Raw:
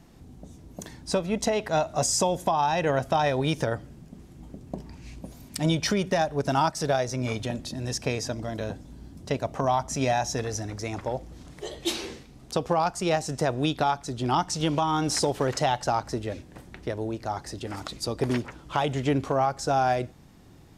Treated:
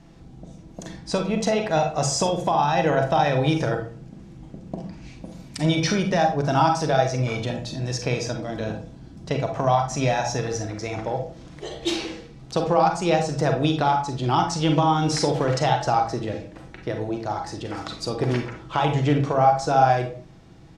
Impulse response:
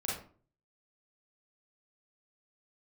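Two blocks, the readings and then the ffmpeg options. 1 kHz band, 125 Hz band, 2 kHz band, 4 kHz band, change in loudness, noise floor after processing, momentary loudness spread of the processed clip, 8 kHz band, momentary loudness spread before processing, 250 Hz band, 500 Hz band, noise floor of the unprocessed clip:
+5.0 dB, +6.0 dB, +3.5 dB, +2.5 dB, +4.0 dB, −45 dBFS, 17 LU, −0.5 dB, 16 LU, +4.0 dB, +4.0 dB, −50 dBFS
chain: -filter_complex "[0:a]lowpass=6400,asplit=2[link_01][link_02];[link_02]aecho=1:1:6.1:0.76[link_03];[1:a]atrim=start_sample=2205[link_04];[link_03][link_04]afir=irnorm=-1:irlink=0,volume=-5dB[link_05];[link_01][link_05]amix=inputs=2:normalize=0,volume=-1dB"

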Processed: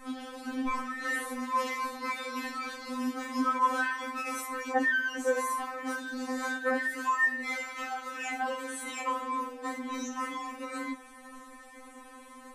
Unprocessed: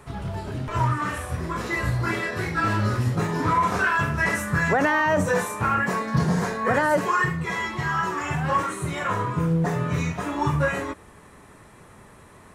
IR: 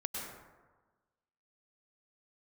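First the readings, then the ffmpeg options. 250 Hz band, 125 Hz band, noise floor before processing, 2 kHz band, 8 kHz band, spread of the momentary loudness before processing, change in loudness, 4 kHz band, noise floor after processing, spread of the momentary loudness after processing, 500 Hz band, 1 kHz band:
−8.5 dB, below −40 dB, −49 dBFS, −6.0 dB, −4.0 dB, 8 LU, −8.0 dB, −5.0 dB, −51 dBFS, 16 LU, −9.5 dB, −7.0 dB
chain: -filter_complex "[0:a]asplit=2[link_01][link_02];[link_02]acompressor=threshold=-29dB:ratio=12,volume=-1dB[link_03];[link_01][link_03]amix=inputs=2:normalize=0,alimiter=limit=-14dB:level=0:latency=1:release=315,afftfilt=real='re*3.46*eq(mod(b,12),0)':imag='im*3.46*eq(mod(b,12),0)':win_size=2048:overlap=0.75,volume=-3dB"

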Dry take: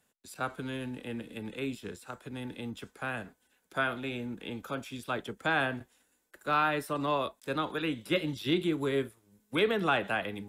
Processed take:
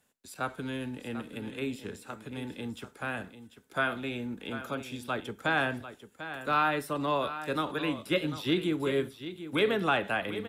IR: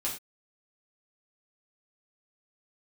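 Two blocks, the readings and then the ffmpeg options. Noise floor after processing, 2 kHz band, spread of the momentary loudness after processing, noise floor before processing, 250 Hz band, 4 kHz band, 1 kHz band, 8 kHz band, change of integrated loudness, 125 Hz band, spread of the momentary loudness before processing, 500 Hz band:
−61 dBFS, +1.0 dB, 13 LU, −74 dBFS, +1.0 dB, +1.0 dB, +1.0 dB, +1.0 dB, +1.0 dB, +0.5 dB, 13 LU, +1.0 dB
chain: -filter_complex "[0:a]aecho=1:1:744:0.251,asplit=2[link_01][link_02];[1:a]atrim=start_sample=2205[link_03];[link_02][link_03]afir=irnorm=-1:irlink=0,volume=-20dB[link_04];[link_01][link_04]amix=inputs=2:normalize=0"

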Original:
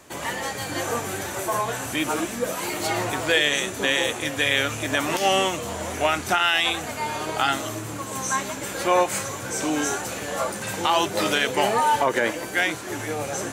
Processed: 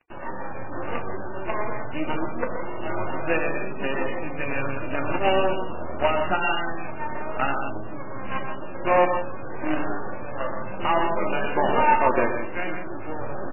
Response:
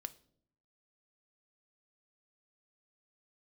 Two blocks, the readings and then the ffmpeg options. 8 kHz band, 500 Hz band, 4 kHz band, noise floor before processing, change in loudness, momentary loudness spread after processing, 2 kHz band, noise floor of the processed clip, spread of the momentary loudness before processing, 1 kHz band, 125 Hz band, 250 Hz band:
below −40 dB, 0.0 dB, −14.0 dB, −33 dBFS, −3.0 dB, 13 LU, −5.0 dB, −29 dBFS, 9 LU, −0.5 dB, −1.0 dB, −1.0 dB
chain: -filter_complex "[0:a]equalizer=frequency=2000:width_type=o:width=0.59:gain=-13,acrusher=bits=4:dc=4:mix=0:aa=0.000001,acontrast=56,flanger=delay=4.7:depth=8.4:regen=-72:speed=0.27:shape=sinusoidal,aecho=1:1:122.4|166.2:0.447|0.355[link_01];[1:a]atrim=start_sample=2205[link_02];[link_01][link_02]afir=irnorm=-1:irlink=0,aresample=8000,aresample=44100,volume=3dB" -ar 11025 -c:a libmp3lame -b:a 8k

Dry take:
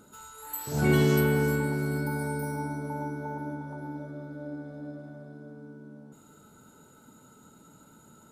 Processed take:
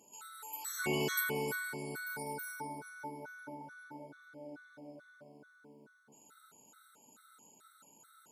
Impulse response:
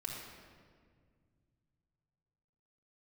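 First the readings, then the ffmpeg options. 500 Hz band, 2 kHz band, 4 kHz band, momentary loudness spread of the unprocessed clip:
−11.0 dB, −4.5 dB, −2.5 dB, 23 LU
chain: -af "highpass=frequency=1300:poles=1,afftfilt=real='re*gt(sin(2*PI*2.3*pts/sr)*(1-2*mod(floor(b*sr/1024/1100),2)),0)':imag='im*gt(sin(2*PI*2.3*pts/sr)*(1-2*mod(floor(b*sr/1024/1100),2)),0)':win_size=1024:overlap=0.75,volume=1.5dB"

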